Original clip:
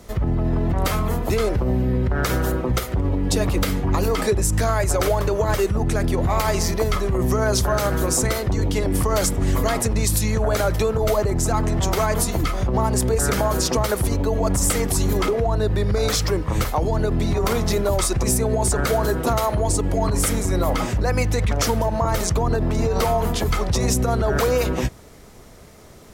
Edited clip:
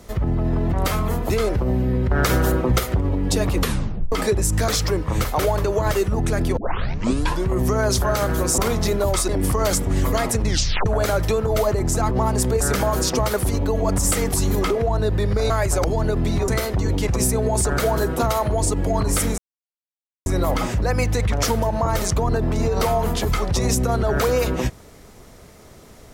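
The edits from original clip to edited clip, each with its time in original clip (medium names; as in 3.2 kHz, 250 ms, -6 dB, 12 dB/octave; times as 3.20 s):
2.11–2.97 s: gain +3 dB
3.59 s: tape stop 0.53 s
4.68–5.02 s: swap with 16.08–16.79 s
6.20 s: tape start 0.93 s
8.21–8.80 s: swap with 17.43–18.14 s
9.97 s: tape stop 0.40 s
11.62–12.69 s: delete
20.45 s: insert silence 0.88 s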